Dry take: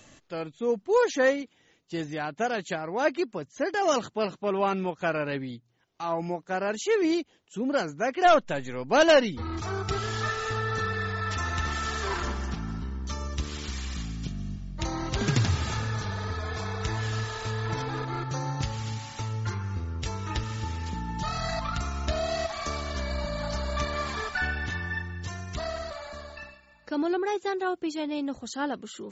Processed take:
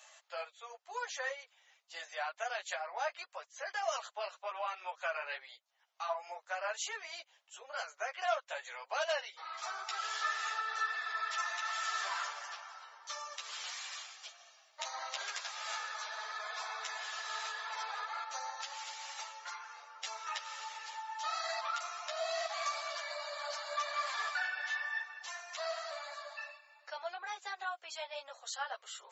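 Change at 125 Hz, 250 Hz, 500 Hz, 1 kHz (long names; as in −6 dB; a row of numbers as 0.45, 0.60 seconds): below −40 dB, below −40 dB, −15.0 dB, −7.5 dB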